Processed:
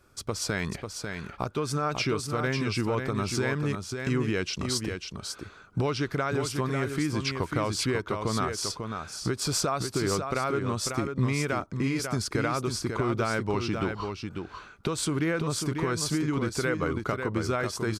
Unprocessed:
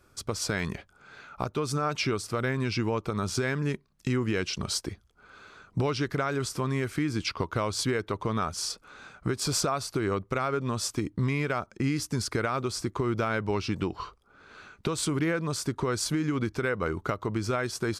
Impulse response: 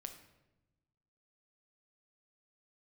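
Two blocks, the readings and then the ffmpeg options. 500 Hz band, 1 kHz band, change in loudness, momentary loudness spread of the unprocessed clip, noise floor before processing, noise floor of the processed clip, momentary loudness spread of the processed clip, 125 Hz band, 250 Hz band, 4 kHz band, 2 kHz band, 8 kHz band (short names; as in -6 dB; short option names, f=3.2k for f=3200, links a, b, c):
+1.0 dB, +1.0 dB, +0.5 dB, 7 LU, -62 dBFS, -49 dBFS, 8 LU, +1.0 dB, +1.0 dB, +1.0 dB, +1.0 dB, +1.0 dB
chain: -af "aecho=1:1:545:0.501"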